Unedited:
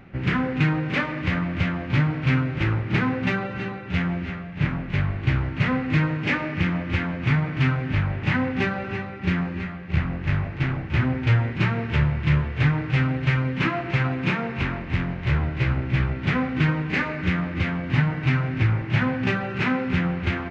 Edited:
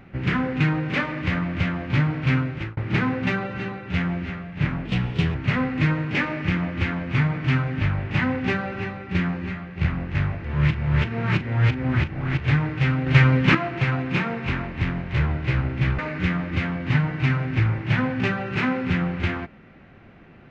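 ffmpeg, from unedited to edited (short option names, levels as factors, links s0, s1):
-filter_complex "[0:a]asplit=9[s0][s1][s2][s3][s4][s5][s6][s7][s8];[s0]atrim=end=2.77,asetpts=PTS-STARTPTS,afade=t=out:st=2.31:d=0.46:c=qsin[s9];[s1]atrim=start=2.77:end=4.854,asetpts=PTS-STARTPTS,afade=t=in:d=0.004:c=hsin[s10];[s2]atrim=start=4.85:end=5.47,asetpts=PTS-STARTPTS,asetrate=55125,aresample=44100[s11];[s3]atrim=start=5.466:end=10.572[s12];[s4]atrim=start=10.568:end=12.532,asetpts=PTS-STARTPTS,areverse[s13];[s5]atrim=start=12.528:end=13.192[s14];[s6]atrim=start=13.188:end=13.672,asetpts=PTS-STARTPTS,volume=2.11[s15];[s7]atrim=start=13.668:end=16.112[s16];[s8]atrim=start=17.018[s17];[s9][s10]concat=n=2:v=0:a=1[s18];[s18][s11]acrossfade=d=0.004:c1=hsin:c2=hsin[s19];[s19][s12]acrossfade=d=0.004:c1=hsin:c2=hsin[s20];[s20][s13]acrossfade=d=0.004:c1=hsin:c2=hsin[s21];[s21][s14]acrossfade=d=0.004:c1=hsin:c2=hsin[s22];[s22][s15]acrossfade=d=0.004:c1=hsin:c2=hsin[s23];[s23][s16]acrossfade=d=0.004:c1=hsin:c2=hsin[s24];[s24][s17]acrossfade=d=0.004:c1=hsin:c2=hsin"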